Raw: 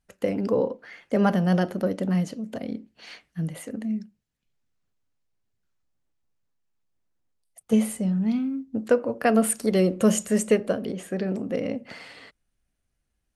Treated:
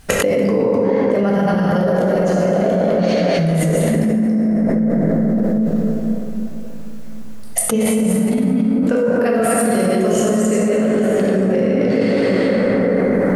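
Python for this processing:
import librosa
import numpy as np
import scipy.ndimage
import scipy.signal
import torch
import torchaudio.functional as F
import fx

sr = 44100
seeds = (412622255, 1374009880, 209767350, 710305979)

y = fx.reverse_delay(x, sr, ms=154, wet_db=0)
y = fx.graphic_eq_31(y, sr, hz=(125, 250, 400, 630, 6300), db=(-12, -11, 7, 12, 3), at=(1.8, 3.82))
y = fx.rev_plate(y, sr, seeds[0], rt60_s=3.8, hf_ratio=0.35, predelay_ms=0, drr_db=-5.0)
y = fx.env_flatten(y, sr, amount_pct=100)
y = F.gain(torch.from_numpy(y), -7.5).numpy()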